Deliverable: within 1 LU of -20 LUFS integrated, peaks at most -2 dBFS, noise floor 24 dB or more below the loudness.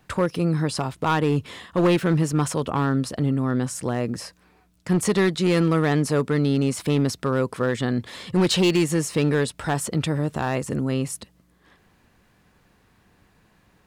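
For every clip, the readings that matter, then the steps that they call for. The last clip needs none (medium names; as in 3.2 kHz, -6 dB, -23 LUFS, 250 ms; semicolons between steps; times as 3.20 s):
clipped samples 1.7%; clipping level -14.0 dBFS; loudness -23.0 LUFS; peak level -14.0 dBFS; loudness target -20.0 LUFS
-> clip repair -14 dBFS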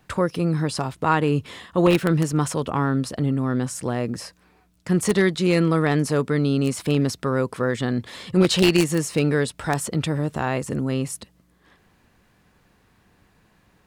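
clipped samples 0.0%; loudness -22.5 LUFS; peak level -5.0 dBFS; loudness target -20.0 LUFS
-> trim +2.5 dB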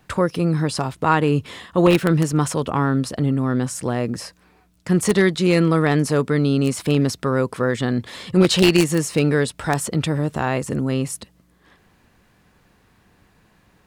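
loudness -20.0 LUFS; peak level -2.5 dBFS; noise floor -59 dBFS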